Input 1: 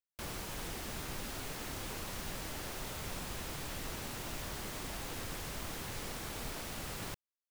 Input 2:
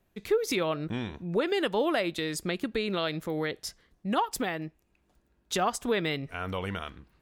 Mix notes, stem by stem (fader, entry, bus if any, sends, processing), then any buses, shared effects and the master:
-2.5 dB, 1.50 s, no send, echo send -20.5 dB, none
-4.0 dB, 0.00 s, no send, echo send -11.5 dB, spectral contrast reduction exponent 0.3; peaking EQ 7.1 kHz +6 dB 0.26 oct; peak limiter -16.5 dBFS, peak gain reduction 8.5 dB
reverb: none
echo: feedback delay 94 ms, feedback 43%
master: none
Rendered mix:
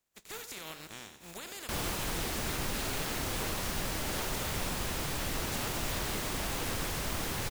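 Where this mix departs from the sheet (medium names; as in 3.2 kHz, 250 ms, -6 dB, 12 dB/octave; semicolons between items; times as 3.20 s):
stem 1 -2.5 dB -> +7.0 dB; stem 2 -4.0 dB -> -14.0 dB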